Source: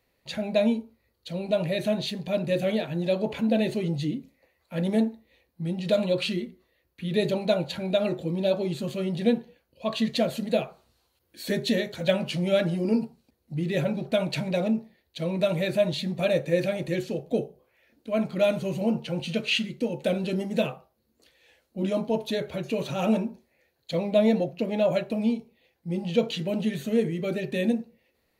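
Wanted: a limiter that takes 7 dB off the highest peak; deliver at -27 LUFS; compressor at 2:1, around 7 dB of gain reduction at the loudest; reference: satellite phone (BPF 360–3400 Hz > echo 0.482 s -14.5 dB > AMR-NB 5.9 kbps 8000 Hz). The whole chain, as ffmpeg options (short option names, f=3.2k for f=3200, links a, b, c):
-af "acompressor=threshold=-30dB:ratio=2,alimiter=limit=-22.5dB:level=0:latency=1,highpass=360,lowpass=3.4k,aecho=1:1:482:0.188,volume=11.5dB" -ar 8000 -c:a libopencore_amrnb -b:a 5900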